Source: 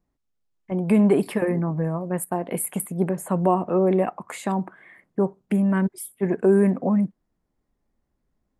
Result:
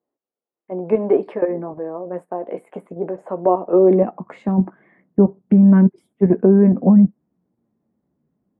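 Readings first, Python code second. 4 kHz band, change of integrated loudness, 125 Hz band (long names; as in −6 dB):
can't be measured, +7.0 dB, +5.5 dB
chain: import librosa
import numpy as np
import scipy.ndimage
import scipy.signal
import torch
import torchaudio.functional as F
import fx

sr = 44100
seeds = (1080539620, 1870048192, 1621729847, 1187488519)

p1 = fx.filter_sweep_highpass(x, sr, from_hz=460.0, to_hz=170.0, start_s=3.66, end_s=4.2, q=1.4)
p2 = fx.level_steps(p1, sr, step_db=20)
p3 = p1 + (p2 * 10.0 ** (2.5 / 20.0))
p4 = fx.tilt_shelf(p3, sr, db=4.5, hz=930.0)
p5 = fx.chorus_voices(p4, sr, voices=4, hz=0.47, base_ms=13, depth_ms=4.4, mix_pct=25)
y = fx.spacing_loss(p5, sr, db_at_10k=34)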